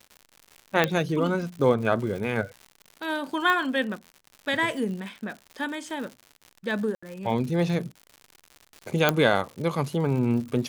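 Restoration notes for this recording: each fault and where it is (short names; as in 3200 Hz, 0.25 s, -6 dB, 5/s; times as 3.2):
crackle 130/s -35 dBFS
0.84 pop -7 dBFS
3.5 pop -13 dBFS
6.95–7.03 gap 75 ms
9.09 pop -5 dBFS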